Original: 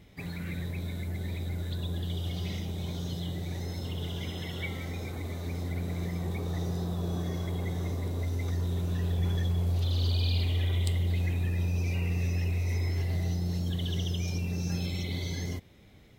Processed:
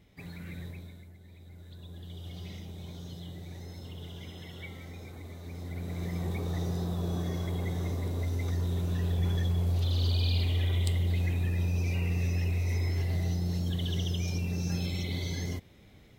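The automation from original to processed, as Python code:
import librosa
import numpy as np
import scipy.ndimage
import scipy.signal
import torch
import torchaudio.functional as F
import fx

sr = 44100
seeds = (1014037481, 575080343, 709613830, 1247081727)

y = fx.gain(x, sr, db=fx.line((0.67, -6.0), (1.19, -19.0), (2.37, -8.0), (5.43, -8.0), (6.19, 0.0)))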